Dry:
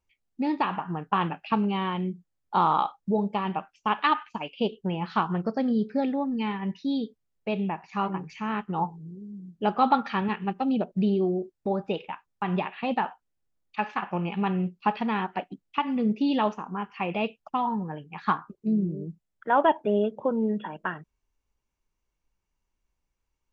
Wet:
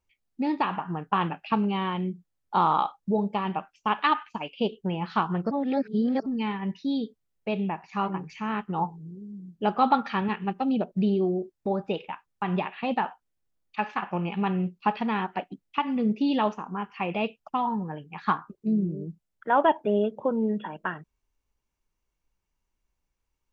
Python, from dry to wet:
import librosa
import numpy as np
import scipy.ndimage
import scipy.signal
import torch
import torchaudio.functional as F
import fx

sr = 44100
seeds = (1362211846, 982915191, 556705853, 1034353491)

y = fx.edit(x, sr, fx.reverse_span(start_s=5.51, length_s=0.75), tone=tone)